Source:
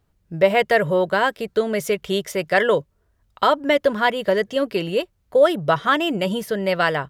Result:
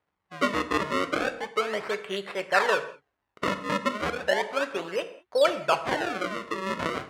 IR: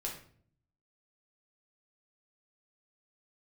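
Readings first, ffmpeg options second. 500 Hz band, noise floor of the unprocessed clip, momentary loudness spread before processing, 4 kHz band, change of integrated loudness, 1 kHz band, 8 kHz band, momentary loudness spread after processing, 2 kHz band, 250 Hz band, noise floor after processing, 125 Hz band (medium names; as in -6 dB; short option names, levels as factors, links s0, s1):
-9.0 dB, -66 dBFS, 6 LU, -6.0 dB, -7.5 dB, -6.0 dB, -3.5 dB, 8 LU, -6.0 dB, -8.5 dB, -81 dBFS, -11.5 dB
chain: -filter_complex "[0:a]acrusher=samples=32:mix=1:aa=0.000001:lfo=1:lforange=51.2:lforate=0.34,bandpass=f=1400:t=q:w=0.79:csg=0,asplit=2[s0][s1];[1:a]atrim=start_sample=2205,afade=t=out:st=0.16:d=0.01,atrim=end_sample=7497,asetrate=23373,aresample=44100[s2];[s1][s2]afir=irnorm=-1:irlink=0,volume=0.282[s3];[s0][s3]amix=inputs=2:normalize=0,volume=0.668"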